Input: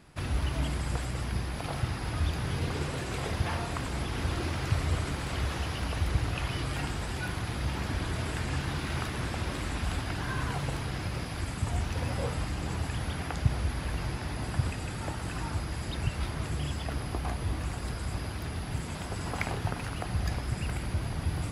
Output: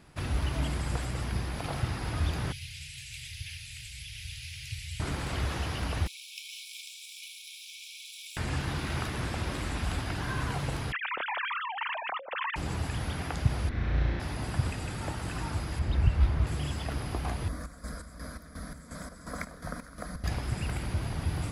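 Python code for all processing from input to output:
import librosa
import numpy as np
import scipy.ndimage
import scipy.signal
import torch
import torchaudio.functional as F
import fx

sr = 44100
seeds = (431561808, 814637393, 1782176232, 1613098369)

y = fx.chain(x, sr, fx.ellip_bandstop(low_hz=120.0, high_hz=2400.0, order=3, stop_db=40),
    fx.low_shelf(hz=470.0, db=-11.0), at=(2.52, 5.0))
y = fx.chain(y, sr, fx.lower_of_two(delay_ms=0.54),
    fx.brickwall_highpass(low_hz=2200.0), at=(6.07, 8.37))
y = fx.chain(y, sr, fx.sine_speech(),
    fx.peak_eq(hz=260.0, db=5.5, octaves=1.4),
    fx.over_compress(threshold_db=-35.0, ratio=-1.0), at=(10.92, 12.56))
y = fx.chain(y, sr, fx.lower_of_two(delay_ms=0.53),
    fx.air_absorb(metres=280.0),
    fx.room_flutter(wall_m=6.0, rt60_s=1.4), at=(13.69, 14.2))
y = fx.chain(y, sr, fx.lowpass(hz=2600.0, slope=6),
    fx.peak_eq(hz=60.0, db=12.0, octaves=1.3), at=(15.79, 16.47))
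y = fx.chain(y, sr, fx.chopper(hz=2.8, depth_pct=65, duty_pct=50),
    fx.fixed_phaser(hz=560.0, stages=8), at=(17.48, 20.24))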